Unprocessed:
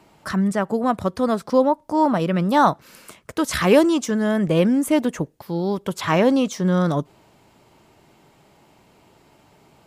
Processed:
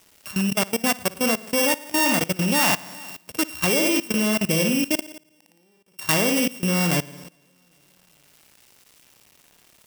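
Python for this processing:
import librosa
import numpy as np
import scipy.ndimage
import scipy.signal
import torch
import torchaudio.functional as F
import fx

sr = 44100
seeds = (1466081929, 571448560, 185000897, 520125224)

y = np.r_[np.sort(x[:len(x) // 16 * 16].reshape(-1, 16), axis=1).ravel(), x[len(x) // 16 * 16:]]
y = fx.hum_notches(y, sr, base_hz=50, count=9, at=(3.58, 4.16))
y = fx.quant_dither(y, sr, seeds[0], bits=8, dither='none')
y = fx.echo_feedback(y, sr, ms=406, feedback_pct=42, wet_db=-24)
y = fx.gate_flip(y, sr, shuts_db=-29.0, range_db=-31, at=(4.95, 5.99))
y = fx.room_flutter(y, sr, wall_m=9.7, rt60_s=0.62)
y = fx.level_steps(y, sr, step_db=20)
y = fx.high_shelf(y, sr, hz=4600.0, db=12.0)
y = F.gain(torch.from_numpy(y), -1.5).numpy()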